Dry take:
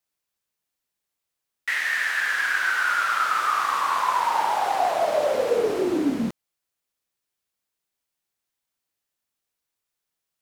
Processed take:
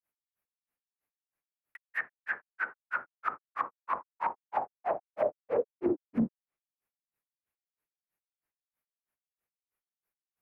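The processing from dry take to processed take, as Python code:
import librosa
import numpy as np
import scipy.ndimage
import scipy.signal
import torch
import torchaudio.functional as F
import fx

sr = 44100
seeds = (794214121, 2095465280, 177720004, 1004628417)

y = fx.band_shelf(x, sr, hz=5200.0, db=-16.0, octaves=1.7)
y = fx.granulator(y, sr, seeds[0], grain_ms=163.0, per_s=3.1, spray_ms=100.0, spread_st=0)
y = fx.env_lowpass_down(y, sr, base_hz=500.0, full_db=-23.5)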